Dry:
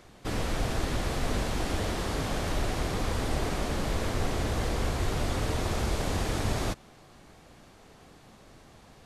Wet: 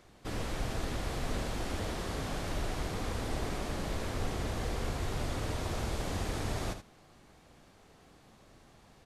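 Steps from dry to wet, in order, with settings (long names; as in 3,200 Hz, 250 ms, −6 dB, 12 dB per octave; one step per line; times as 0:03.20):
single-tap delay 77 ms −9.5 dB
level −6 dB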